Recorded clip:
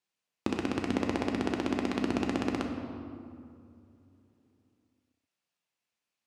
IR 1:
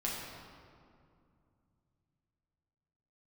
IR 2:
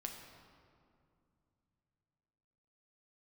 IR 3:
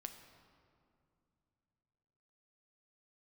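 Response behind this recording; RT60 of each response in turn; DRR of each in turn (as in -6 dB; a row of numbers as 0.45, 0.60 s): 2; 2.4, 2.5, 2.7 s; -5.0, 2.0, 6.0 dB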